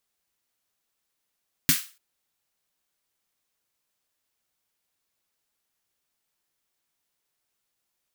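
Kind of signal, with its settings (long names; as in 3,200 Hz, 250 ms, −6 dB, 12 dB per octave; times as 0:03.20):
synth snare length 0.29 s, tones 160 Hz, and 260 Hz, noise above 1,400 Hz, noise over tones 4 dB, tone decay 0.11 s, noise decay 0.34 s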